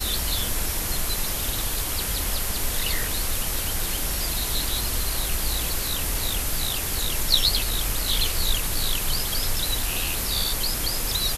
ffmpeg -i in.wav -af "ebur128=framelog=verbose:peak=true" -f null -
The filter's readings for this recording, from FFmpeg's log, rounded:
Integrated loudness:
  I:         -24.2 LUFS
  Threshold: -34.2 LUFS
Loudness range:
  LRA:         2.4 LU
  Threshold: -44.1 LUFS
  LRA low:   -25.3 LUFS
  LRA high:  -22.9 LUFS
True peak:
  Peak:       -4.9 dBFS